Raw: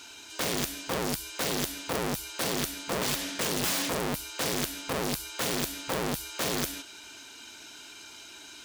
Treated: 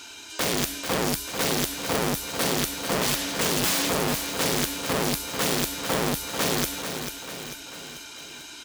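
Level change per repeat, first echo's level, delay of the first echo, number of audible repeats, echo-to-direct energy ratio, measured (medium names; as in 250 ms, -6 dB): -5.0 dB, -8.0 dB, 442 ms, 4, -6.5 dB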